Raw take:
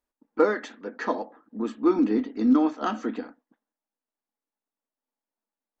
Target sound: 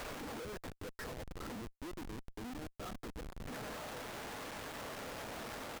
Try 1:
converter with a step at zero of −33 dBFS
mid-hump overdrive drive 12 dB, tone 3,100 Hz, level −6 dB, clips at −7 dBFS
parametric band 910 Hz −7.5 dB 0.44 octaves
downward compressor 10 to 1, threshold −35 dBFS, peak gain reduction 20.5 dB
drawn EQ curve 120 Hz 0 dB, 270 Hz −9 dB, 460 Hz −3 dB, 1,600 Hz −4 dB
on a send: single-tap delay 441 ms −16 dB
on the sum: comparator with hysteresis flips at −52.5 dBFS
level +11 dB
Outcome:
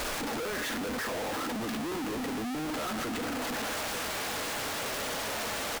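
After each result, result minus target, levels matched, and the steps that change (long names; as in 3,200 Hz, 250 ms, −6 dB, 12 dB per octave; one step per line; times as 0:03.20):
downward compressor: peak gain reduction −10 dB; converter with a step at zero: distortion +7 dB
change: downward compressor 10 to 1, threshold −46.5 dBFS, peak gain reduction 31 dB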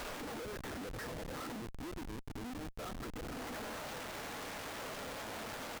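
converter with a step at zero: distortion +7 dB
change: converter with a step at zero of −41 dBFS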